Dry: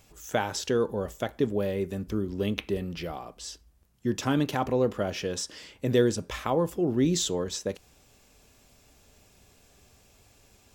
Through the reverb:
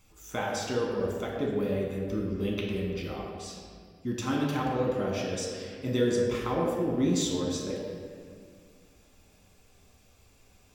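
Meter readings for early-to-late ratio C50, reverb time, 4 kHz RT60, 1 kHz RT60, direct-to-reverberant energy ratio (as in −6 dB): 1.0 dB, 2.0 s, 1.4 s, 1.9 s, −3.0 dB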